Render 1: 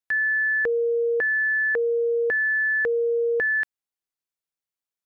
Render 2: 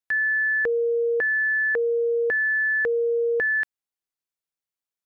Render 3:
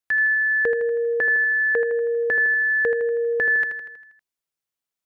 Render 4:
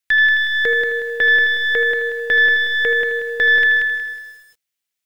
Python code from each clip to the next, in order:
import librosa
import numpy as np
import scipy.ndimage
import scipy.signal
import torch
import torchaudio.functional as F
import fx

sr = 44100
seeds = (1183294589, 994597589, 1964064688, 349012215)

y1 = x
y2 = fx.echo_feedback(y1, sr, ms=80, feedback_pct=58, wet_db=-8)
y2 = y2 * 10.0 ** (2.5 / 20.0)
y3 = fx.tracing_dist(y2, sr, depth_ms=0.03)
y3 = fx.high_shelf_res(y3, sr, hz=1500.0, db=6.5, q=1.5)
y3 = fx.echo_crushed(y3, sr, ms=183, feedback_pct=35, bits=8, wet_db=-4.5)